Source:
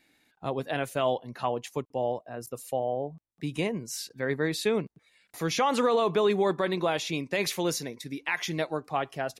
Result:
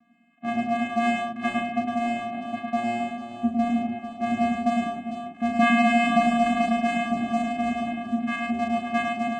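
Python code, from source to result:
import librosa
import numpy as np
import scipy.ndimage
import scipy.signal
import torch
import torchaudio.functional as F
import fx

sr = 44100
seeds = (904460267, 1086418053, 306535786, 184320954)

p1 = fx.reverse_delay_fb(x, sr, ms=671, feedback_pct=45, wet_db=-13)
p2 = scipy.signal.sosfilt(scipy.signal.butter(4, 1500.0, 'lowpass', fs=sr, output='sos'), p1)
p3 = fx.low_shelf(p2, sr, hz=240.0, db=-10.5)
p4 = (np.mod(10.0 ** (27.0 / 20.0) * p3 + 1.0, 2.0) - 1.0) / 10.0 ** (27.0 / 20.0)
p5 = p3 + (p4 * 10.0 ** (-8.0 / 20.0))
p6 = fx.vocoder(p5, sr, bands=4, carrier='square', carrier_hz=235.0)
p7 = fx.doubler(p6, sr, ms=36.0, db=-4.0)
p8 = p7 + fx.echo_multitap(p7, sr, ms=(106, 449), db=(-3.5, -10.0), dry=0)
y = p8 * 10.0 ** (9.0 / 20.0)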